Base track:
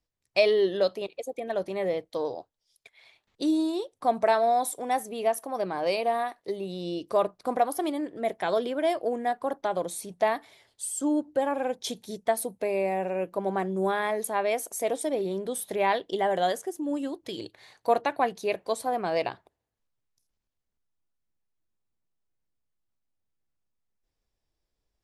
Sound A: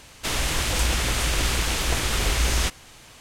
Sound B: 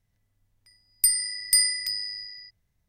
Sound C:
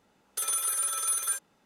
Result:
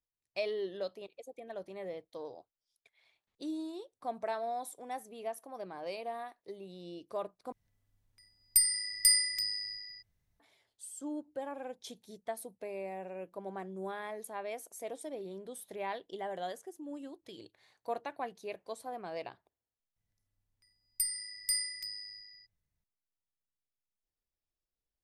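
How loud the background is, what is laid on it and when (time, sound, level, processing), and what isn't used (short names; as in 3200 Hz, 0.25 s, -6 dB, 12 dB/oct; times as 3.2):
base track -13.5 dB
7.52 replace with B -4.5 dB
19.96 add B -12 dB
not used: A, C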